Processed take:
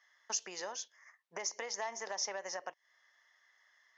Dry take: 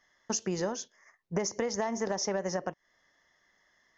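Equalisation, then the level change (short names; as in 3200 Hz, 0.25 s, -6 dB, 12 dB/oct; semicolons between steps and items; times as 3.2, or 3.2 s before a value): HPF 1100 Hz 12 dB/oct; dynamic EQ 1400 Hz, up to -6 dB, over -58 dBFS, Q 1.8; high shelf 5700 Hz -8 dB; +2.0 dB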